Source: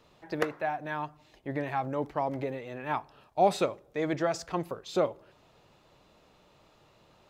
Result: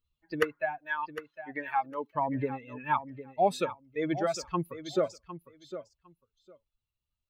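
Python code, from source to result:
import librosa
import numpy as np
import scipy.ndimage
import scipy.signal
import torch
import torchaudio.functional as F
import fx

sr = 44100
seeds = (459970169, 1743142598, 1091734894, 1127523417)

y = fx.bin_expand(x, sr, power=2.0)
y = fx.highpass(y, sr, hz=580.0, slope=12, at=(0.78, 2.15))
y = fx.rider(y, sr, range_db=5, speed_s=0.5)
y = fx.echo_feedback(y, sr, ms=756, feedback_pct=16, wet_db=-12.5)
y = y * 10.0 ** (3.5 / 20.0)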